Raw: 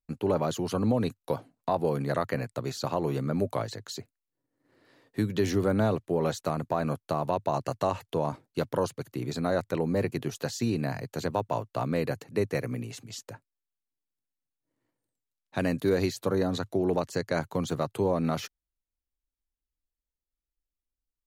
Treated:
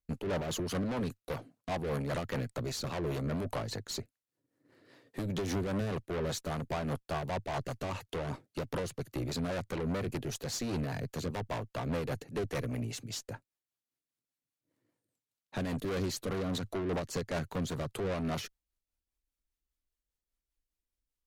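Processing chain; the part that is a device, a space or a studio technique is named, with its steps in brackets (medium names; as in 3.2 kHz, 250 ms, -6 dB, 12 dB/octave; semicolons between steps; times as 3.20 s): overdriven rotary cabinet (valve stage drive 34 dB, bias 0.45; rotary cabinet horn 5 Hz); trim +4.5 dB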